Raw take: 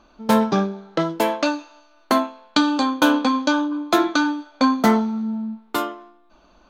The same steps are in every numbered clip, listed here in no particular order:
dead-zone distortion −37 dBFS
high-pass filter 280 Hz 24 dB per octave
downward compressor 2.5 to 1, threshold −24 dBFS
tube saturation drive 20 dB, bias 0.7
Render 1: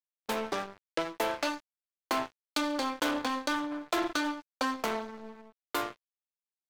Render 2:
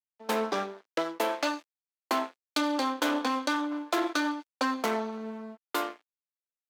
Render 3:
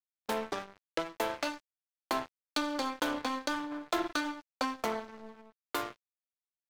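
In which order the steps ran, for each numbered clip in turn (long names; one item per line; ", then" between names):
tube saturation, then downward compressor, then high-pass filter, then dead-zone distortion
dead-zone distortion, then tube saturation, then high-pass filter, then downward compressor
downward compressor, then tube saturation, then high-pass filter, then dead-zone distortion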